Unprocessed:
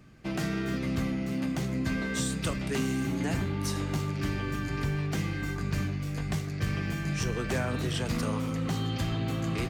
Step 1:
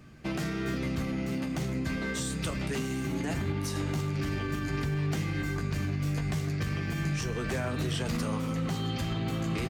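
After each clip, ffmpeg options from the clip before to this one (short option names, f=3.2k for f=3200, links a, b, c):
-filter_complex "[0:a]alimiter=level_in=1.5dB:limit=-24dB:level=0:latency=1:release=73,volume=-1.5dB,asplit=2[a][b];[b]adelay=13,volume=-11dB[c];[a][c]amix=inputs=2:normalize=0,volume=2.5dB"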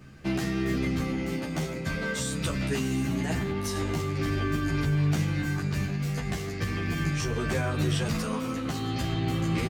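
-filter_complex "[0:a]asplit=2[a][b];[b]adelay=11.9,afreqshift=-0.35[c];[a][c]amix=inputs=2:normalize=1,volume=6dB"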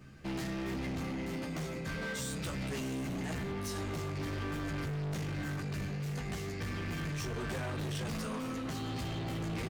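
-af "asoftclip=type=hard:threshold=-30dB,volume=-4.5dB"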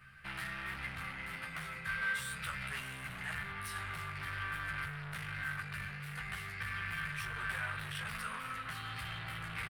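-af "firequalizer=gain_entry='entry(120,0);entry(290,-17);entry(450,-9);entry(1400,15);entry(6600,-7);entry(9400,10);entry(14000,4)':delay=0.05:min_phase=1,volume=-7dB"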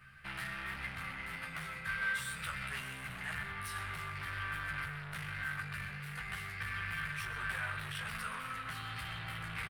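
-af "aecho=1:1:126:0.211"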